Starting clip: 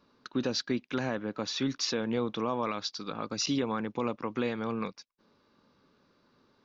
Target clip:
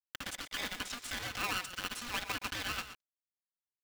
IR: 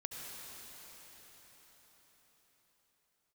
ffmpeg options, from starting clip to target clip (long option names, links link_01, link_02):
-filter_complex "[0:a]aeval=exprs='val(0)+0.5*0.00708*sgn(val(0))':channel_layout=same,equalizer=frequency=1400:width=1.7:gain=3,acrusher=bits=4:mix=0:aa=0.5,aecho=1:1:7:0.58,acompressor=threshold=-26dB:ratio=6,highpass=800,lowpass=2200,asplit=2[link_01][link_02];[link_02]adelay=210,highpass=300,lowpass=3400,asoftclip=type=hard:threshold=-36.5dB,volume=-8dB[link_03];[link_01][link_03]amix=inputs=2:normalize=0,asetrate=76440,aresample=44100,aeval=exprs='val(0)*sgn(sin(2*PI*720*n/s))':channel_layout=same"